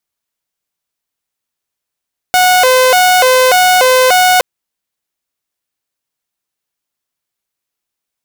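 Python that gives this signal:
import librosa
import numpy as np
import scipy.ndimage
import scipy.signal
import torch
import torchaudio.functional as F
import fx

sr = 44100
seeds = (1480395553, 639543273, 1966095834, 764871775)

y = fx.siren(sr, length_s=2.07, kind='hi-lo', low_hz=512.0, high_hz=733.0, per_s=1.7, wave='saw', level_db=-3.5)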